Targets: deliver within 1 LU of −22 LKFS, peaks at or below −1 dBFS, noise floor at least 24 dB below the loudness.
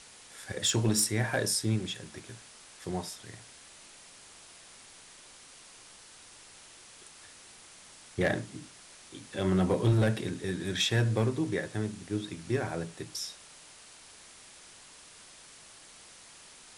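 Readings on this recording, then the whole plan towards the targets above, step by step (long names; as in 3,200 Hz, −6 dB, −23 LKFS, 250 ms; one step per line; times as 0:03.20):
share of clipped samples 0.2%; peaks flattened at −19.0 dBFS; background noise floor −53 dBFS; target noise floor −55 dBFS; integrated loudness −30.5 LKFS; sample peak −19.0 dBFS; target loudness −22.0 LKFS
→ clipped peaks rebuilt −19 dBFS
broadband denoise 6 dB, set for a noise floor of −53 dBFS
level +8.5 dB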